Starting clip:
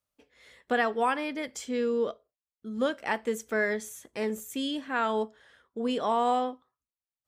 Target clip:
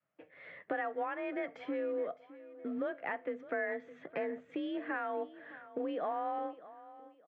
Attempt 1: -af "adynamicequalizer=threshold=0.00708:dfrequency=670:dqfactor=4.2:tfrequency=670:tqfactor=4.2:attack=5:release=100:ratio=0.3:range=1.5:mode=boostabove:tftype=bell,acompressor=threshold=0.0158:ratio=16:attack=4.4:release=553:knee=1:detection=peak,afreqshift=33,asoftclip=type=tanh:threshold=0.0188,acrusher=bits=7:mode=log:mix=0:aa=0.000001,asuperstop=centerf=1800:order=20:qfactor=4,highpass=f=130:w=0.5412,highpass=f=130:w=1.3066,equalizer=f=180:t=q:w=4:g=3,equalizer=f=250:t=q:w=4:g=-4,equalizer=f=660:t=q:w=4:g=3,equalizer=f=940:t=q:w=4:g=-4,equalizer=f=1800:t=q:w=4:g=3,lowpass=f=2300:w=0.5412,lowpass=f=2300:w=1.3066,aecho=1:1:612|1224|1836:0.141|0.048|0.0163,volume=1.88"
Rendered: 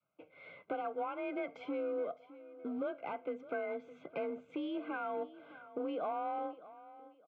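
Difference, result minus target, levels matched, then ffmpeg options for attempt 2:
saturation: distortion +14 dB; 2 kHz band -5.0 dB
-af "adynamicequalizer=threshold=0.00708:dfrequency=670:dqfactor=4.2:tfrequency=670:tqfactor=4.2:attack=5:release=100:ratio=0.3:range=1.5:mode=boostabove:tftype=bell,acompressor=threshold=0.0158:ratio=16:attack=4.4:release=553:knee=1:detection=peak,afreqshift=33,asoftclip=type=tanh:threshold=0.0501,acrusher=bits=7:mode=log:mix=0:aa=0.000001,highpass=f=130:w=0.5412,highpass=f=130:w=1.3066,equalizer=f=180:t=q:w=4:g=3,equalizer=f=250:t=q:w=4:g=-4,equalizer=f=660:t=q:w=4:g=3,equalizer=f=940:t=q:w=4:g=-4,equalizer=f=1800:t=q:w=4:g=3,lowpass=f=2300:w=0.5412,lowpass=f=2300:w=1.3066,aecho=1:1:612|1224|1836:0.141|0.048|0.0163,volume=1.88"

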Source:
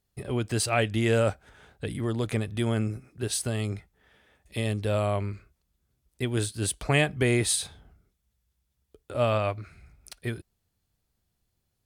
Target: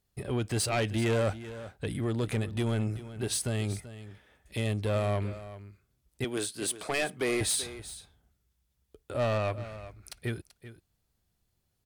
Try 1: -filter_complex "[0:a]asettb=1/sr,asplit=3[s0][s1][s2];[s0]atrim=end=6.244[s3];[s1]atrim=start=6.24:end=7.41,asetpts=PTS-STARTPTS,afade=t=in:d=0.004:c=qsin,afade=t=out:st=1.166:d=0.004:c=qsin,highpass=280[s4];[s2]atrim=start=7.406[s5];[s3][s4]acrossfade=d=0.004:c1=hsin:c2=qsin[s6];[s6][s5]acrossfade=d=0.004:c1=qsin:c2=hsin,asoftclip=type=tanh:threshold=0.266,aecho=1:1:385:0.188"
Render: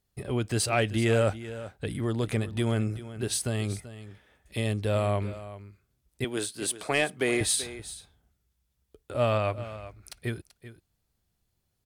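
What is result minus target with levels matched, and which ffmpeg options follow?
saturation: distortion -14 dB
-filter_complex "[0:a]asettb=1/sr,asplit=3[s0][s1][s2];[s0]atrim=end=6.244[s3];[s1]atrim=start=6.24:end=7.41,asetpts=PTS-STARTPTS,afade=t=in:d=0.004:c=qsin,afade=t=out:st=1.166:d=0.004:c=qsin,highpass=280[s4];[s2]atrim=start=7.406[s5];[s3][s4]acrossfade=d=0.004:c1=hsin:c2=qsin[s6];[s6][s5]acrossfade=d=0.004:c1=qsin:c2=hsin,asoftclip=type=tanh:threshold=0.0708,aecho=1:1:385:0.188"

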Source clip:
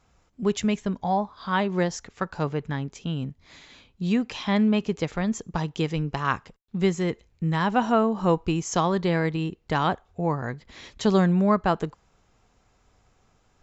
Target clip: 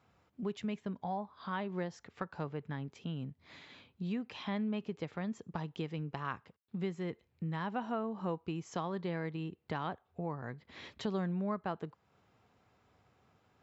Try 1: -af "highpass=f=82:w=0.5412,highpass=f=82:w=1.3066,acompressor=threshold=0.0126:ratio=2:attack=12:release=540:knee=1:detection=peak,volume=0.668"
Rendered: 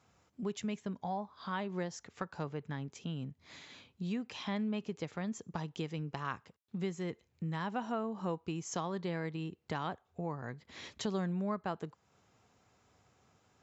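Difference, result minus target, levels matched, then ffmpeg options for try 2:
8 kHz band +11.0 dB
-af "highpass=f=82:w=0.5412,highpass=f=82:w=1.3066,acompressor=threshold=0.0126:ratio=2:attack=12:release=540:knee=1:detection=peak,equalizer=f=6700:w=1.4:g=-12,volume=0.668"

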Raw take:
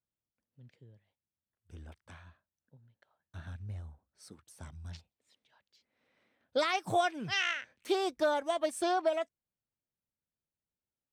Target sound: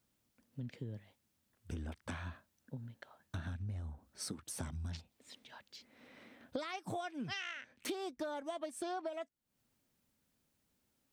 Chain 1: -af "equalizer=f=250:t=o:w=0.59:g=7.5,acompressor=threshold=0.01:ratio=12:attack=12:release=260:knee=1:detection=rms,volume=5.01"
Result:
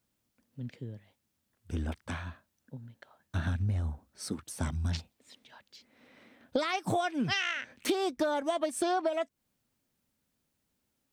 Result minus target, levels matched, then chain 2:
compression: peak gain reduction -11 dB
-af "equalizer=f=250:t=o:w=0.59:g=7.5,acompressor=threshold=0.00251:ratio=12:attack=12:release=260:knee=1:detection=rms,volume=5.01"

